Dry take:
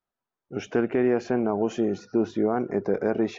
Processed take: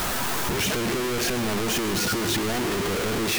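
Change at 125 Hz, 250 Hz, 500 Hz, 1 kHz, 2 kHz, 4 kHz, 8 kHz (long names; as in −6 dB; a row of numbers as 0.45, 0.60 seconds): +6.0 dB, −2.0 dB, −3.0 dB, +4.5 dB, +10.5 dB, +20.5 dB, can't be measured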